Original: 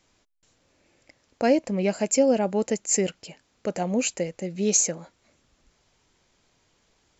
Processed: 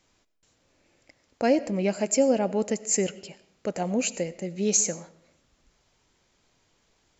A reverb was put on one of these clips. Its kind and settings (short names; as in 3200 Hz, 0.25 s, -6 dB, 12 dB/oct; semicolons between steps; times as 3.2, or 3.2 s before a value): digital reverb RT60 0.67 s, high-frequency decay 0.75×, pre-delay 50 ms, DRR 16.5 dB; gain -1.5 dB